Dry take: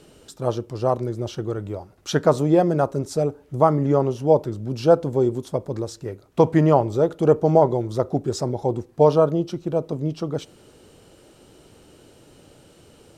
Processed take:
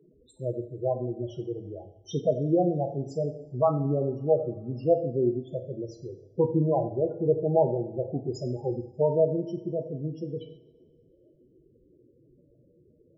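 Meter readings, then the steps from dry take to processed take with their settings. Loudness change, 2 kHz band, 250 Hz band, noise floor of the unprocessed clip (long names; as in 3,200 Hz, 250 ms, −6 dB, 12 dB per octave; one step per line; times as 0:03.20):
−7.0 dB, below −35 dB, −7.0 dB, −52 dBFS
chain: spectral peaks only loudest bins 8
coupled-rooms reverb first 0.56 s, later 2.4 s, from −21 dB, DRR 4.5 dB
level −7 dB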